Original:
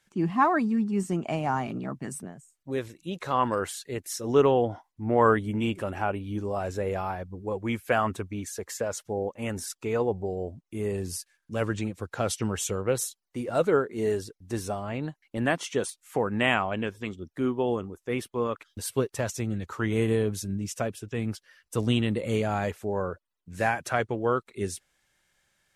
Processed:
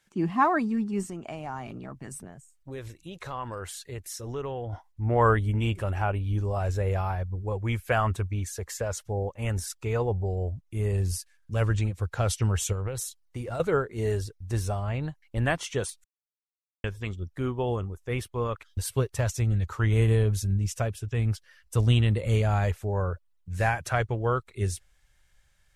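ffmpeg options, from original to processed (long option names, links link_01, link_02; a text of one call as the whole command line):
ffmpeg -i in.wav -filter_complex "[0:a]asettb=1/sr,asplit=3[link_01][link_02][link_03];[link_01]atrim=end=1.054[link_04];[link_02]atrim=start=1.05:end=4.73,asetpts=PTS-STARTPTS,afade=type=in:duration=0.004:curve=qsin,afade=type=out:start_time=3.676:duration=0.004:curve=qsin,acompressor=threshold=-37dB:ratio=2:attack=3.2:release=140:knee=1:detection=peak[link_05];[link_03]atrim=start=4.726[link_06];[link_04][link_05]acrossfade=duration=0.004:curve1=hsin:curve2=qsin[link_07];[link_07][link_06]acrossfade=duration=0.004:curve1=qsin:curve2=hsin,asettb=1/sr,asplit=3[link_08][link_09][link_10];[link_08]atrim=end=12.724[link_11];[link_09]atrim=start=12.72:end=13.6,asetpts=PTS-STARTPTS,afade=type=in:duration=0.004:curve=qsin,afade=type=out:start_time=0.876:duration=0.004:curve=qsin,acompressor=threshold=-29dB:ratio=6:attack=3.2:release=140:knee=1:detection=peak[link_12];[link_10]atrim=start=13.596[link_13];[link_11][link_12]acrossfade=duration=0.004:curve1=hsin:curve2=qsin[link_14];[link_14][link_13]acrossfade=duration=0.004:curve1=qsin:curve2=hsin,asplit=3[link_15][link_16][link_17];[link_15]atrim=end=16.04,asetpts=PTS-STARTPTS,afade=type=out:start_time=16.036:duration=0.004:curve=hsin[link_18];[link_16]atrim=start=16.04:end=16.84,asetpts=PTS-STARTPTS,volume=0[link_19];[link_17]atrim=start=16.84,asetpts=PTS-STARTPTS,afade=type=in:duration=0.004:curve=hsin[link_20];[link_18][link_19][link_20]concat=n=3:v=0:a=1,asubboost=boost=11:cutoff=73" out.wav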